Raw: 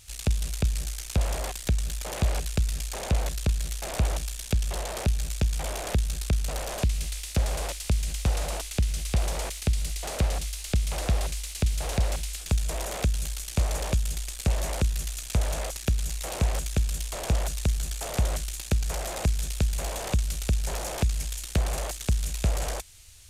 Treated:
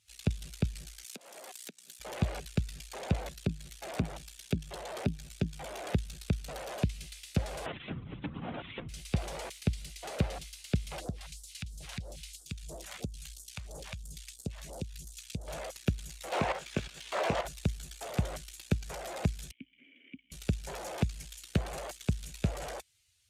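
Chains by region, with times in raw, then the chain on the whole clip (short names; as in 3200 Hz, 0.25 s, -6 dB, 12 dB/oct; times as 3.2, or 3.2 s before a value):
1.04–2 high shelf 4400 Hz +8 dB + compressor 20:1, threshold -30 dBFS + HPF 200 Hz 24 dB/oct
3.29–5.9 HPF 40 Hz + core saturation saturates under 160 Hz
7.66–8.89 half-waves squared off + compressor 20:1, threshold -29 dBFS + LPC vocoder at 8 kHz whisper
11–15.48 compressor 5:1, threshold -26 dBFS + phaser stages 2, 3 Hz, lowest notch 330–2400 Hz
16.32–17.45 doubler 21 ms -9 dB + level quantiser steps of 12 dB + overdrive pedal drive 22 dB, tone 2500 Hz, clips at -16 dBFS
19.51–20.32 vowel filter i + resonant high shelf 3500 Hz -6.5 dB, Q 3
whole clip: per-bin expansion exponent 1.5; HPF 130 Hz 12 dB/oct; tone controls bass +4 dB, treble -9 dB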